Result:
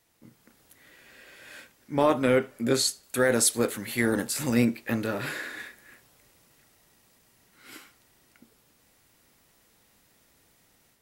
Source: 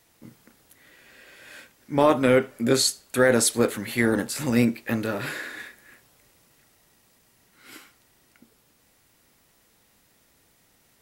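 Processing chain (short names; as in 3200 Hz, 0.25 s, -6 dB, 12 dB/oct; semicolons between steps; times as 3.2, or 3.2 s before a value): 3.03–4.54 high shelf 5100 Hz +5.5 dB; AGC gain up to 6 dB; gain -7 dB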